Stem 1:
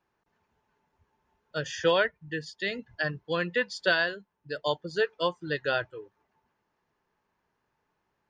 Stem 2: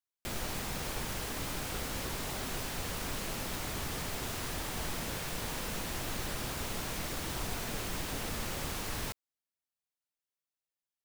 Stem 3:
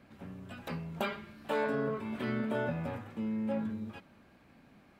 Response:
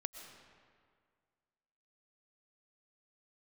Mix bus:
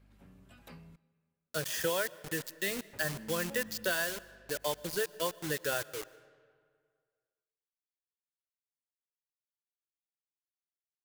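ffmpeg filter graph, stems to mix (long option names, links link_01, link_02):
-filter_complex "[0:a]equalizer=frequency=5400:width=0.47:gain=-6.5,acompressor=threshold=-32dB:ratio=2.5,acrusher=bits=6:mix=0:aa=0.000001,volume=-3dB,asplit=2[link_01][link_02];[link_02]volume=-8.5dB[link_03];[2:a]aeval=exprs='val(0)+0.00355*(sin(2*PI*50*n/s)+sin(2*PI*2*50*n/s)/2+sin(2*PI*3*50*n/s)/3+sin(2*PI*4*50*n/s)/4+sin(2*PI*5*50*n/s)/5)':channel_layout=same,volume=-14.5dB,asplit=3[link_04][link_05][link_06];[link_04]atrim=end=0.96,asetpts=PTS-STARTPTS,afade=type=out:start_time=0.956:duration=0.004:curve=hsin[link_07];[link_05]atrim=start=0.96:end=2.93,asetpts=PTS-STARTPTS,volume=0[link_08];[link_06]atrim=start=2.93,asetpts=PTS-STARTPTS,afade=type=in:duration=0.004:curve=hsin[link_09];[link_07][link_08][link_09]concat=n=3:v=0:a=1,asplit=2[link_10][link_11];[link_11]volume=-13dB[link_12];[3:a]atrim=start_sample=2205[link_13];[link_03][link_12]amix=inputs=2:normalize=0[link_14];[link_14][link_13]afir=irnorm=-1:irlink=0[link_15];[link_01][link_10][link_15]amix=inputs=3:normalize=0,highshelf=frequency=4300:gain=11.5"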